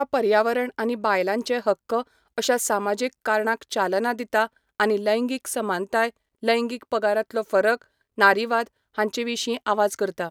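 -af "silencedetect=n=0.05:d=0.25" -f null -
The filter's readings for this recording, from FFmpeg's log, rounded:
silence_start: 2.02
silence_end: 2.38 | silence_duration: 0.36
silence_start: 4.46
silence_end: 4.80 | silence_duration: 0.34
silence_start: 6.08
silence_end: 6.43 | silence_duration: 0.35
silence_start: 7.75
silence_end: 8.18 | silence_duration: 0.43
silence_start: 8.63
silence_end: 8.98 | silence_duration: 0.35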